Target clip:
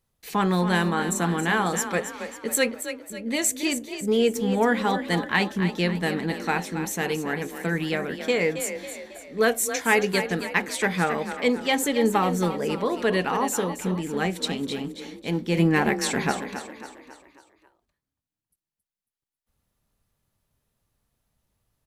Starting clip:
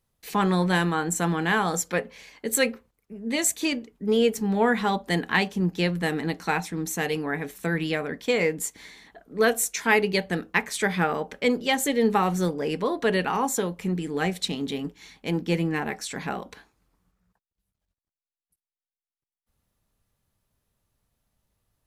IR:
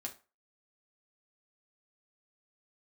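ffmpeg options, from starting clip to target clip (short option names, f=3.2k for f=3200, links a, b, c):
-filter_complex "[0:a]asettb=1/sr,asplit=3[a][b][c];[a]atrim=end=15.574[d];[b]atrim=start=15.57:end=16.32,asetpts=PTS-STARTPTS,afade=t=in:d=0.004:c=qsin,afade=t=out:st=0.746:d=0.004:c=qsin,acontrast=67[e];[c]atrim=start=16.316[f];[d][e]acrossfade=d=0.004:c1=hsin:c2=qsin[g];[g][f]acrossfade=d=0.004:c1=qsin:c2=hsin,asplit=2[h][i];[i]asplit=5[j][k][l][m][n];[j]adelay=273,afreqshift=30,volume=-10dB[o];[k]adelay=546,afreqshift=60,volume=-16.4dB[p];[l]adelay=819,afreqshift=90,volume=-22.8dB[q];[m]adelay=1092,afreqshift=120,volume=-29.1dB[r];[n]adelay=1365,afreqshift=150,volume=-35.5dB[s];[o][p][q][r][s]amix=inputs=5:normalize=0[t];[h][t]amix=inputs=2:normalize=0"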